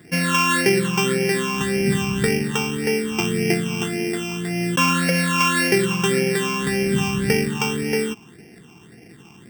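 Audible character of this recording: a buzz of ramps at a fixed pitch in blocks of 16 samples; phasing stages 8, 1.8 Hz, lowest notch 550–1100 Hz

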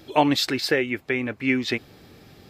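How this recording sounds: noise floor -51 dBFS; spectral tilt -4.0 dB/oct

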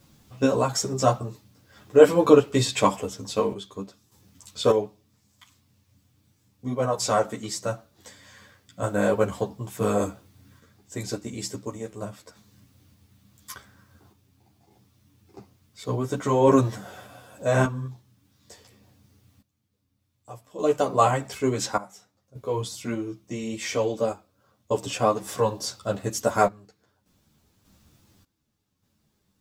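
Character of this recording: a quantiser's noise floor 12-bit, dither triangular; random-step tremolo 1.7 Hz, depth 90%; a shimmering, thickened sound

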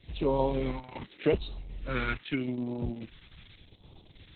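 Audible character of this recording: phasing stages 2, 0.83 Hz, lowest notch 550–1700 Hz; tremolo saw up 1.4 Hz, depth 35%; Opus

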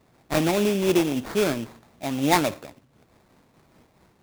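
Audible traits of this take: aliases and images of a low sample rate 3000 Hz, jitter 20%; noise-modulated level

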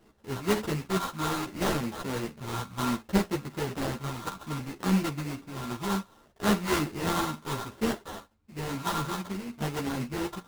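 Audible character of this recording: a buzz of ramps at a fixed pitch in blocks of 32 samples; phasing stages 6, 0.64 Hz, lowest notch 620–2100 Hz; aliases and images of a low sample rate 2400 Hz, jitter 20%; a shimmering, thickened sound

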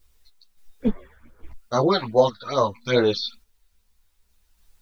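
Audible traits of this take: phasing stages 8, 2.4 Hz, lowest notch 310–3100 Hz; a quantiser's noise floor 12-bit, dither triangular; random-step tremolo 3.5 Hz; a shimmering, thickened sound

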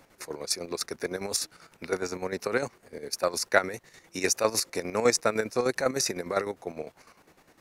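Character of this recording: chopped level 9.9 Hz, depth 60%, duty 50%

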